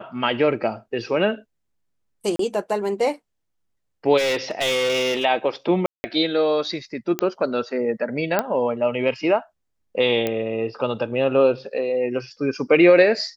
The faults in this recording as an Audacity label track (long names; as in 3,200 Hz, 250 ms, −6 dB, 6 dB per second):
2.360000	2.390000	drop-out 33 ms
4.170000	5.250000	clipping −18.5 dBFS
5.860000	6.040000	drop-out 180 ms
7.190000	7.190000	click −7 dBFS
8.390000	8.390000	click −6 dBFS
10.270000	10.270000	click −10 dBFS